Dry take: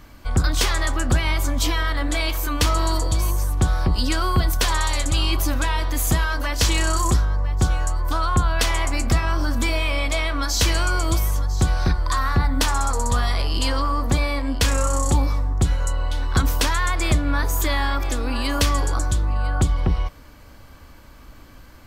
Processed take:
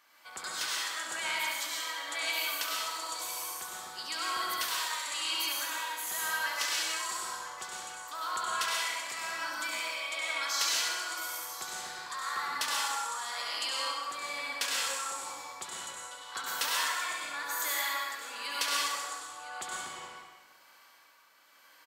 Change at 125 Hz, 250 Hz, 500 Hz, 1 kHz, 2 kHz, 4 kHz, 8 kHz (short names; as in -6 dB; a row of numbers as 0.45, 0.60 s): under -40 dB, -28.0 dB, -17.0 dB, -9.0 dB, -6.5 dB, -5.5 dB, -6.5 dB